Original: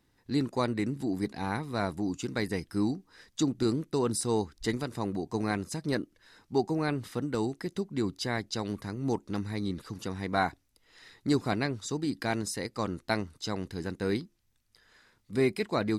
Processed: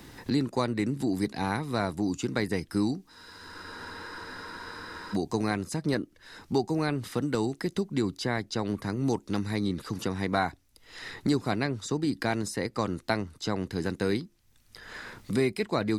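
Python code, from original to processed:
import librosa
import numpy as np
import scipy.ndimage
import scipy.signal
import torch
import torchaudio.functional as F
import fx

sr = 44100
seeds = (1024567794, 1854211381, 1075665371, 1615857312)

y = fx.spec_freeze(x, sr, seeds[0], at_s=3.1, hold_s=2.04)
y = fx.band_squash(y, sr, depth_pct=70)
y = y * 10.0 ** (2.0 / 20.0)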